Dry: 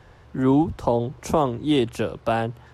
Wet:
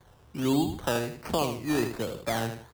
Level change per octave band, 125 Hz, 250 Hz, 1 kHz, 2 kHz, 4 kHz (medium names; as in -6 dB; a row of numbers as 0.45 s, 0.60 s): -7.0 dB, -6.5 dB, -7.5 dB, -0.5 dB, -1.5 dB